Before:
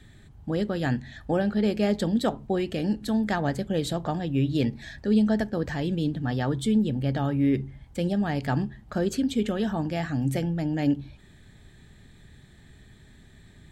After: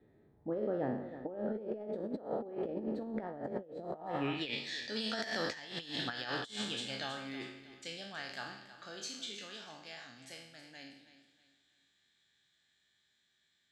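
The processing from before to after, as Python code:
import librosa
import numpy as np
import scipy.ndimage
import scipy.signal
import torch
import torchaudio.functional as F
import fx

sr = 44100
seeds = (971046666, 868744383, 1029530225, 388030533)

p1 = fx.spec_trails(x, sr, decay_s=0.73)
p2 = fx.doppler_pass(p1, sr, speed_mps=11, closest_m=3.7, pass_at_s=5.79)
p3 = 10.0 ** (-29.0 / 20.0) * np.tanh(p2 / 10.0 ** (-29.0 / 20.0))
p4 = p2 + (p3 * 10.0 ** (-10.5 / 20.0))
p5 = fx.echo_feedback(p4, sr, ms=320, feedback_pct=33, wet_db=-13.5)
p6 = fx.filter_sweep_bandpass(p5, sr, from_hz=470.0, to_hz=4900.0, start_s=3.91, end_s=4.65, q=1.7)
p7 = fx.over_compress(p6, sr, threshold_db=-51.0, ratio=-0.5)
p8 = fx.high_shelf(p7, sr, hz=4400.0, db=-10.0)
y = p8 * 10.0 ** (14.5 / 20.0)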